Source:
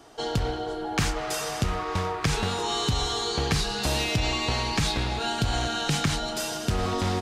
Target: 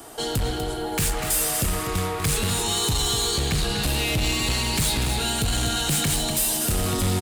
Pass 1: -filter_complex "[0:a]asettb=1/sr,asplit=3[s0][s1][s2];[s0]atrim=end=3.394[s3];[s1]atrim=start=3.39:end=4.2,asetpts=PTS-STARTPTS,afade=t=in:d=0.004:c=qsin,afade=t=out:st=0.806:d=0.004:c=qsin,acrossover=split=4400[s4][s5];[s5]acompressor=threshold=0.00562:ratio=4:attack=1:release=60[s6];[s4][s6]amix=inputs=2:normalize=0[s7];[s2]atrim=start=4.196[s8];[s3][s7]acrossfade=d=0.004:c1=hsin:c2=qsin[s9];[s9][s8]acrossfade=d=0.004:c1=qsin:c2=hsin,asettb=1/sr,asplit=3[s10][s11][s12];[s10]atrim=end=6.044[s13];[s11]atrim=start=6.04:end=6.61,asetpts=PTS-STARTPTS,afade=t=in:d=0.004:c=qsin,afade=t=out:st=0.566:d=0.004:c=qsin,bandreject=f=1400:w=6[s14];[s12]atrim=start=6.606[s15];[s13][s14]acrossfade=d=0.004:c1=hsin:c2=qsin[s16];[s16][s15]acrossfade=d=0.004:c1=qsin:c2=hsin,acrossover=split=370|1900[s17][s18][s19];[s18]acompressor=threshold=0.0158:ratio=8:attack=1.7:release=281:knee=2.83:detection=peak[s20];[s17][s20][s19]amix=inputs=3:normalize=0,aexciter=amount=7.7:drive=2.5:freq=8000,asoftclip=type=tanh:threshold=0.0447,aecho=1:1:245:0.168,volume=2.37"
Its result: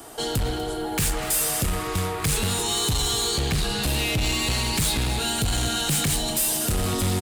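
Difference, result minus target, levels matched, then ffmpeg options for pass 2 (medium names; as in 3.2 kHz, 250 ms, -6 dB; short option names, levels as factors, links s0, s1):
echo-to-direct -7.5 dB
-filter_complex "[0:a]asettb=1/sr,asplit=3[s0][s1][s2];[s0]atrim=end=3.394[s3];[s1]atrim=start=3.39:end=4.2,asetpts=PTS-STARTPTS,afade=t=in:d=0.004:c=qsin,afade=t=out:st=0.806:d=0.004:c=qsin,acrossover=split=4400[s4][s5];[s5]acompressor=threshold=0.00562:ratio=4:attack=1:release=60[s6];[s4][s6]amix=inputs=2:normalize=0[s7];[s2]atrim=start=4.196[s8];[s3][s7]acrossfade=d=0.004:c1=hsin:c2=qsin[s9];[s9][s8]acrossfade=d=0.004:c1=qsin:c2=hsin,asettb=1/sr,asplit=3[s10][s11][s12];[s10]atrim=end=6.044[s13];[s11]atrim=start=6.04:end=6.61,asetpts=PTS-STARTPTS,afade=t=in:d=0.004:c=qsin,afade=t=out:st=0.566:d=0.004:c=qsin,bandreject=f=1400:w=6[s14];[s12]atrim=start=6.606[s15];[s13][s14]acrossfade=d=0.004:c1=hsin:c2=qsin[s16];[s16][s15]acrossfade=d=0.004:c1=qsin:c2=hsin,acrossover=split=370|1900[s17][s18][s19];[s18]acompressor=threshold=0.0158:ratio=8:attack=1.7:release=281:knee=2.83:detection=peak[s20];[s17][s20][s19]amix=inputs=3:normalize=0,aexciter=amount=7.7:drive=2.5:freq=8000,asoftclip=type=tanh:threshold=0.0447,aecho=1:1:245:0.398,volume=2.37"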